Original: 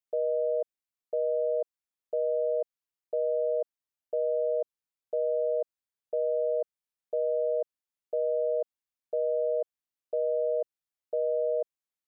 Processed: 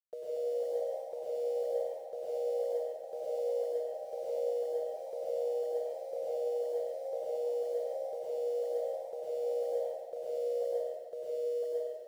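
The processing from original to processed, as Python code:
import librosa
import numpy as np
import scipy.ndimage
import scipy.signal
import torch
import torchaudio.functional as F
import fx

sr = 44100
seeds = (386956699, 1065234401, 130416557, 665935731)

y = fx.notch(x, sr, hz=630.0, q=15.0)
y = fx.over_compress(y, sr, threshold_db=-42.0, ratio=-1.0)
y = np.where(np.abs(y) >= 10.0 ** (-56.0 / 20.0), y, 0.0)
y = fx.echo_pitch(y, sr, ms=249, semitones=2, count=2, db_per_echo=-6.0)
y = y + 10.0 ** (-9.0 / 20.0) * np.pad(y, (int(138 * sr / 1000.0), 0))[:len(y)]
y = fx.rev_plate(y, sr, seeds[0], rt60_s=1.5, hf_ratio=0.9, predelay_ms=85, drr_db=-6.5)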